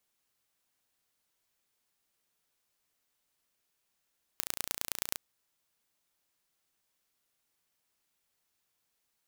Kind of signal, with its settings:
impulse train 29 per second, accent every 3, −3.5 dBFS 0.78 s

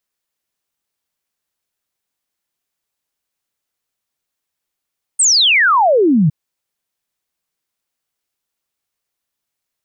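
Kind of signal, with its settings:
exponential sine sweep 8,900 Hz → 140 Hz 1.11 s −8.5 dBFS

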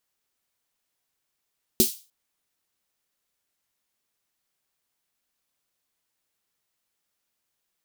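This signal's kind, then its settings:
synth snare length 0.30 s, tones 230 Hz, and 370 Hz, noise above 3,400 Hz, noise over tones 0.5 dB, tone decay 0.12 s, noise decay 0.33 s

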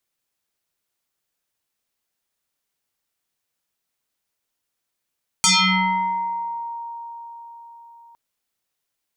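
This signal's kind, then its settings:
two-operator FM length 2.71 s, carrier 933 Hz, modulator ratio 1.2, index 7.7, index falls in 1.35 s exponential, decay 4.82 s, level −12 dB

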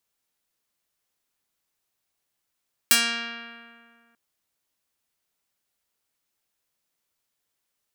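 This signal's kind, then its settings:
Karplus-Strong string A#3, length 1.24 s, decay 2.09 s, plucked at 0.46, medium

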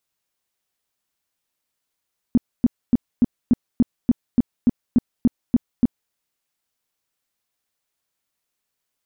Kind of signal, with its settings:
tone bursts 241 Hz, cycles 6, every 0.29 s, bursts 13, −10 dBFS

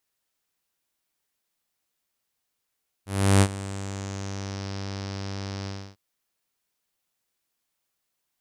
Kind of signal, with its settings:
subtractive voice saw G2 12 dB per octave, low-pass 5,300 Hz, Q 4.2, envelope 1 octave, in 1.63 s, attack 354 ms, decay 0.06 s, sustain −17.5 dB, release 0.29 s, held 2.61 s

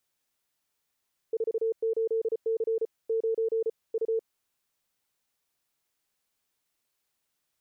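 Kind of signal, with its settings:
Morse code "48C 9 U" 34 words per minute 450 Hz −24 dBFS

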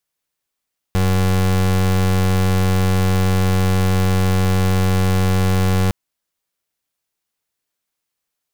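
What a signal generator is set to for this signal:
pulse wave 93.8 Hz, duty 30% −15.5 dBFS 4.96 s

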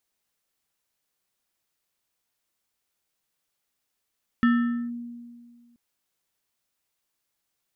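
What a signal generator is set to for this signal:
two-operator FM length 1.33 s, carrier 238 Hz, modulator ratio 6.51, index 0.55, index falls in 0.48 s linear, decay 1.91 s, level −15 dB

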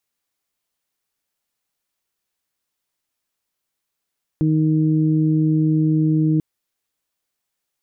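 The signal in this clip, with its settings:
steady harmonic partials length 1.99 s, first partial 156 Hz, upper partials −1/−20 dB, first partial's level −16.5 dB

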